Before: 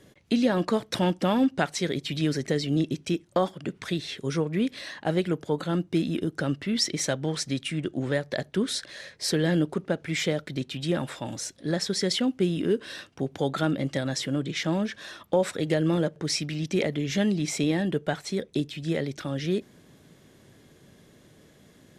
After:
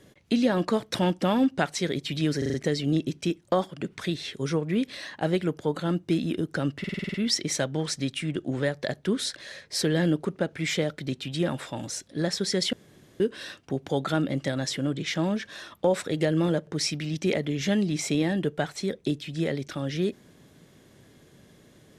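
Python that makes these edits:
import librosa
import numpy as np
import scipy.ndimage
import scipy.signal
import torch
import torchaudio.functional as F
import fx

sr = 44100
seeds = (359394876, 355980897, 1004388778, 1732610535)

y = fx.edit(x, sr, fx.stutter(start_s=2.38, slice_s=0.04, count=5),
    fx.stutter(start_s=6.63, slice_s=0.05, count=8),
    fx.room_tone_fill(start_s=12.22, length_s=0.47), tone=tone)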